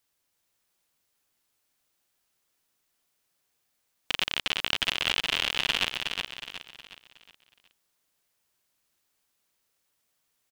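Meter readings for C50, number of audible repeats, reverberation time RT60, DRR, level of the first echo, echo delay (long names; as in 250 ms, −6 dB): no reverb audible, 4, no reverb audible, no reverb audible, −5.0 dB, 366 ms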